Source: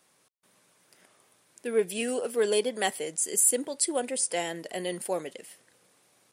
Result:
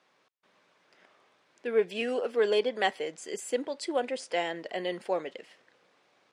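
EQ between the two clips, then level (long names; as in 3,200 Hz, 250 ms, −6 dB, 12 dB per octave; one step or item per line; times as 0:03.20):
high-pass filter 430 Hz 6 dB per octave
high-frequency loss of the air 200 metres
+3.5 dB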